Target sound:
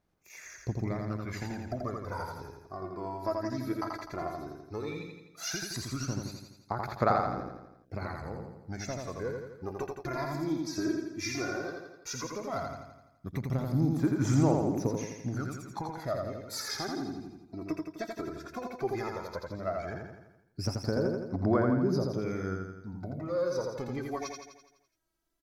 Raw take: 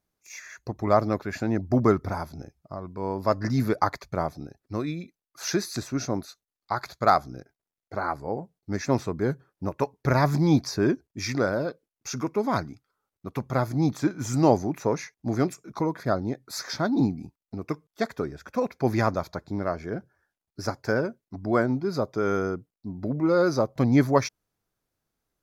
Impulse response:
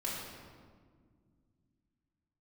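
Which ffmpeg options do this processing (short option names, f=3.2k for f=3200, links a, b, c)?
-af "acompressor=threshold=-28dB:ratio=6,aphaser=in_gain=1:out_gain=1:delay=3.1:decay=0.71:speed=0.14:type=sinusoidal,aecho=1:1:84|168|252|336|420|504|588|672:0.668|0.368|0.202|0.111|0.0612|0.0336|0.0185|0.0102,volume=-6dB"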